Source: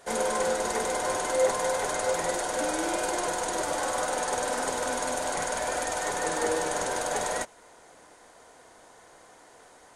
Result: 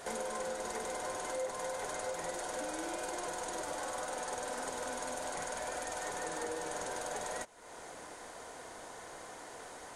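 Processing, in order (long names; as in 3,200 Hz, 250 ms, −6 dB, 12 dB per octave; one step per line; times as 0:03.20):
downward compressor 3 to 1, threshold −48 dBFS, peak gain reduction 21 dB
level +5.5 dB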